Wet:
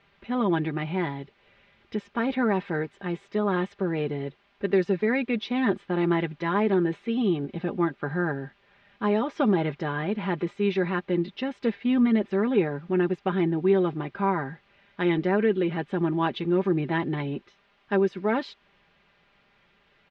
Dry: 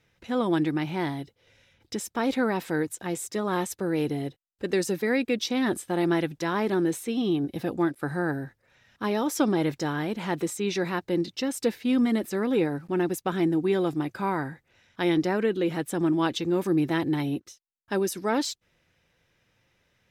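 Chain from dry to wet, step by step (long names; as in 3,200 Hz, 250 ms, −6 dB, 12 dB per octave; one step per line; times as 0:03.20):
background noise white −58 dBFS
low-pass filter 3,100 Hz 24 dB per octave
comb filter 5 ms, depth 56%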